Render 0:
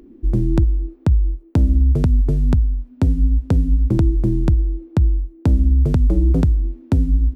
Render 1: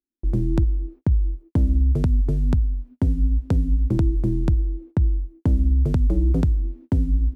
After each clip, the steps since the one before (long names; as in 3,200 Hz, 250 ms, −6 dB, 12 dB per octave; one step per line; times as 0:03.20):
noise gate −36 dBFS, range −47 dB
level −4 dB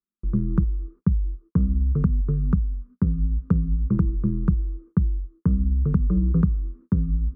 drawn EQ curve 120 Hz 0 dB, 190 Hz +13 dB, 280 Hz −9 dB, 440 Hz +2 dB, 740 Hz −17 dB, 1,200 Hz +11 dB, 1,900 Hz −7 dB, 3,600 Hz −21 dB
level −3.5 dB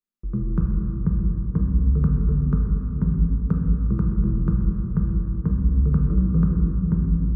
rectangular room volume 210 cubic metres, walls hard, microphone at 0.49 metres
level −3 dB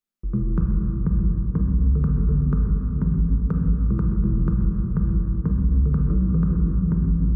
brickwall limiter −14.5 dBFS, peak gain reduction 6 dB
level +2 dB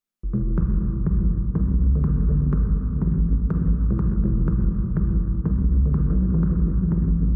highs frequency-modulated by the lows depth 0.36 ms